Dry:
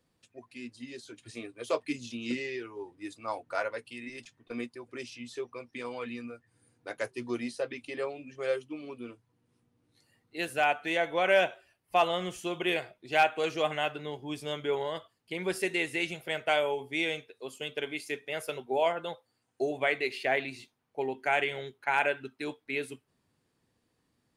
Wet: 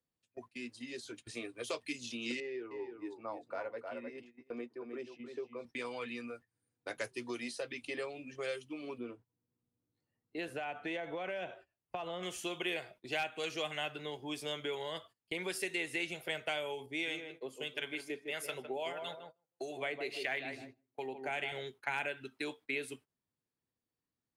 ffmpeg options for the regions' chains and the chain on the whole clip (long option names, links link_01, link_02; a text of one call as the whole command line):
ffmpeg -i in.wav -filter_complex "[0:a]asettb=1/sr,asplit=3[link_01][link_02][link_03];[link_01]atrim=end=2.404[link_04];[link_02]atrim=start=2.4:end=5.65,asetpts=PTS-STARTPTS,afade=type=in:duration=0.004:curve=qsin,afade=type=out:start_time=3.246:duration=0.004:curve=qsin,bandpass=frequency=440:width_type=q:width=0.68,aecho=1:1:308:0.376,atrim=end_sample=143325[link_05];[link_03]atrim=start=5.646[link_06];[link_04][link_05]acrossfade=duration=0.004:curve1=hsin:curve2=qsin[link_07];[link_07][link_06]acrossfade=duration=0.004:curve1=qsin:curve2=hsin,asettb=1/sr,asplit=3[link_08][link_09][link_10];[link_08]atrim=end=8.984[link_11];[link_09]atrim=start=8.98:end=12.23,asetpts=PTS-STARTPTS,afade=type=in:duration=0.004:curve=qsin,afade=type=out:start_time=3.246:duration=0.004:curve=qsin,lowpass=frequency=2700:poles=1,tiltshelf=frequency=1200:gain=4,acompressor=threshold=-30dB:ratio=6:attack=3.2:release=140:knee=1:detection=peak[link_12];[link_10]atrim=start=12.226[link_13];[link_11][link_12]acrossfade=duration=0.004:curve1=hsin:curve2=qsin[link_14];[link_14][link_13]acrossfade=duration=0.004:curve1=qsin:curve2=hsin,asettb=1/sr,asplit=3[link_15][link_16][link_17];[link_15]atrim=end=16.864[link_18];[link_16]atrim=start=16.86:end=21.52,asetpts=PTS-STARTPTS,afade=type=in:duration=0.004:curve=qsin,afade=type=out:start_time=4.656:duration=0.004:curve=qsin,acrossover=split=900[link_19][link_20];[link_19]aeval=exprs='val(0)*(1-0.7/2+0.7/2*cos(2*PI*1.6*n/s))':channel_layout=same[link_21];[link_20]aeval=exprs='val(0)*(1-0.7/2-0.7/2*cos(2*PI*1.6*n/s))':channel_layout=same[link_22];[link_21][link_22]amix=inputs=2:normalize=0,asplit=2[link_23][link_24];[link_24]adelay=156,lowpass=frequency=990:poles=1,volume=-7dB,asplit=2[link_25][link_26];[link_26]adelay=156,lowpass=frequency=990:poles=1,volume=0.27,asplit=2[link_27][link_28];[link_28]adelay=156,lowpass=frequency=990:poles=1,volume=0.27[link_29];[link_23][link_25][link_27][link_29]amix=inputs=4:normalize=0,atrim=end_sample=205506[link_30];[link_17]atrim=start=21.516[link_31];[link_18][link_30]acrossfade=duration=0.004:curve1=hsin:curve2=qsin[link_32];[link_32][link_31]acrossfade=duration=0.004:curve1=qsin:curve2=hsin,agate=range=-19dB:threshold=-52dB:ratio=16:detection=peak,acrossover=split=280|2100[link_33][link_34][link_35];[link_33]acompressor=threshold=-54dB:ratio=4[link_36];[link_34]acompressor=threshold=-41dB:ratio=4[link_37];[link_35]acompressor=threshold=-39dB:ratio=4[link_38];[link_36][link_37][link_38]amix=inputs=3:normalize=0,volume=1dB" out.wav